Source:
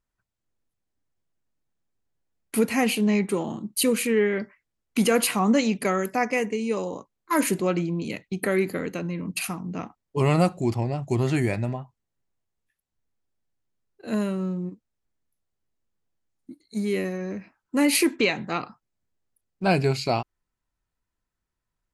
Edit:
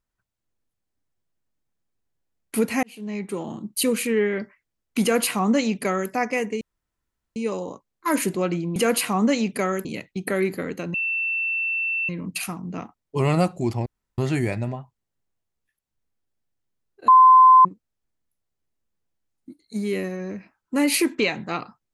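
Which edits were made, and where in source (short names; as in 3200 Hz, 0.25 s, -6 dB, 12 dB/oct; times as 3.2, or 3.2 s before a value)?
2.83–3.64 fade in
5.02–6.11 copy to 8.01
6.61 insert room tone 0.75 s
9.1 add tone 2680 Hz -22 dBFS 1.15 s
10.87–11.19 room tone
14.09–14.66 bleep 1030 Hz -8 dBFS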